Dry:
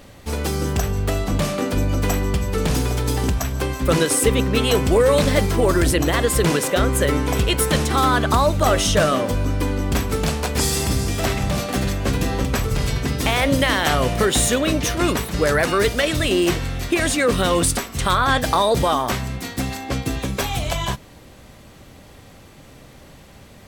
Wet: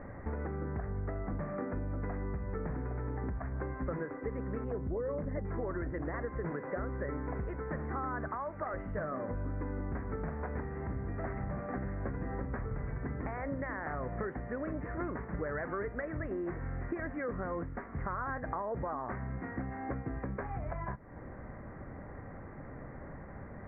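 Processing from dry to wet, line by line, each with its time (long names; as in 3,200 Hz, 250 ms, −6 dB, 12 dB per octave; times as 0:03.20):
0:04.64–0:05.45: spectral envelope exaggerated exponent 1.5
0:08.28–0:08.74: spectral tilt +3.5 dB per octave
whole clip: downward compressor 6 to 1, threshold −34 dBFS; Butterworth low-pass 2,000 Hz 72 dB per octave; level −1 dB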